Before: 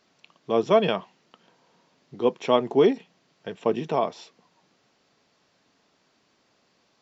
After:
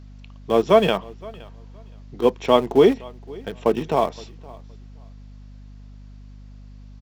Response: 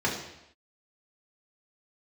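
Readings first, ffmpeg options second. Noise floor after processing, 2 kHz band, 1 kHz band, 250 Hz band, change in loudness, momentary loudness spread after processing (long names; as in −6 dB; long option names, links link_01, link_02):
−42 dBFS, +4.5 dB, +4.5 dB, +4.5 dB, +4.5 dB, 20 LU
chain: -filter_complex "[0:a]aeval=exprs='val(0)+0.00708*(sin(2*PI*50*n/s)+sin(2*PI*2*50*n/s)/2+sin(2*PI*3*50*n/s)/3+sin(2*PI*4*50*n/s)/4+sin(2*PI*5*50*n/s)/5)':channel_layout=same,asplit=2[link_01][link_02];[link_02]aeval=exprs='val(0)*gte(abs(val(0)),0.0531)':channel_layout=same,volume=-10dB[link_03];[link_01][link_03]amix=inputs=2:normalize=0,aecho=1:1:518|1036:0.0708|0.0135,volume=2dB"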